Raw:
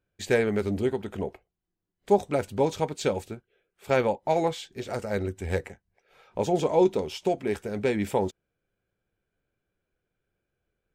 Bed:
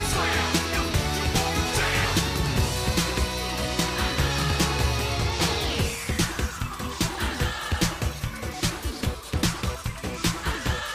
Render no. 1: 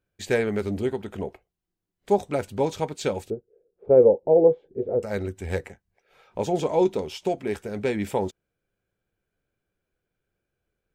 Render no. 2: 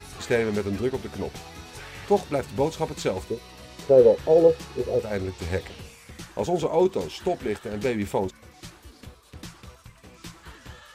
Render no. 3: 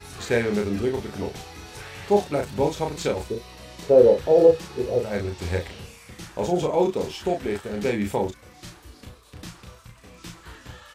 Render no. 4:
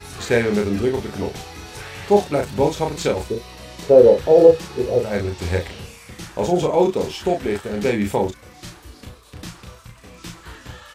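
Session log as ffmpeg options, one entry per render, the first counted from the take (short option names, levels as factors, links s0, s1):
-filter_complex "[0:a]asettb=1/sr,asplit=3[s0][s1][s2];[s0]atrim=end=3.304[s3];[s1]atrim=start=3.3:end=5.03,asetpts=PTS-STARTPTS,afade=t=in:d=0.004:c=qsin,afade=t=out:st=1.726:d=0.004:c=qsin,lowpass=f=470:t=q:w=5[s4];[s2]atrim=start=5.026[s5];[s3][s4]acrossfade=d=0.004:c1=hsin:c2=qsin[s6];[s6][s5]acrossfade=d=0.004:c1=qsin:c2=hsin"
-filter_complex "[1:a]volume=0.141[s0];[0:a][s0]amix=inputs=2:normalize=0"
-filter_complex "[0:a]asplit=2[s0][s1];[s1]adelay=34,volume=0.631[s2];[s0][s2]amix=inputs=2:normalize=0"
-af "volume=1.68,alimiter=limit=0.891:level=0:latency=1"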